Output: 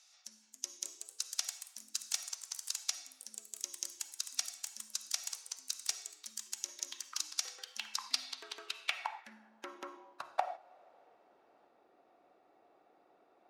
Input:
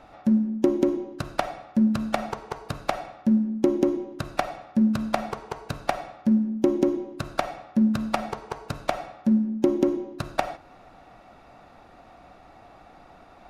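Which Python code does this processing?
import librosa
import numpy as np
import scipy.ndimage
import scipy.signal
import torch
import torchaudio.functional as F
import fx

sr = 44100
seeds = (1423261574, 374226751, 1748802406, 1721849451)

y = fx.filter_sweep_bandpass(x, sr, from_hz=6100.0, to_hz=390.0, start_s=7.82, end_s=11.31, q=2.9)
y = scipy.signal.lfilter([1.0, -0.97], [1.0], y)
y = fx.echo_pitch(y, sr, ms=318, semitones=3, count=3, db_per_echo=-6.0)
y = F.gain(torch.from_numpy(y), 14.0).numpy()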